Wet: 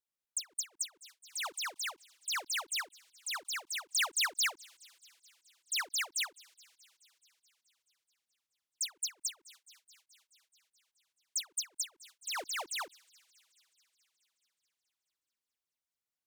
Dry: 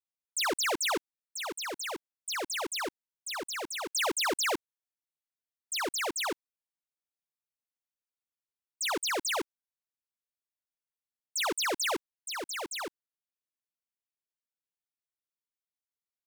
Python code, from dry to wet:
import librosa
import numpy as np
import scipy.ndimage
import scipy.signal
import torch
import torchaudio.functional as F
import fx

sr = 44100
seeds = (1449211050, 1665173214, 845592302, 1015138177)

y = fx.vibrato(x, sr, rate_hz=5.2, depth_cents=9.7)
y = fx.echo_wet_highpass(y, sr, ms=214, feedback_pct=72, hz=3300.0, wet_db=-24.0)
y = fx.end_taper(y, sr, db_per_s=370.0)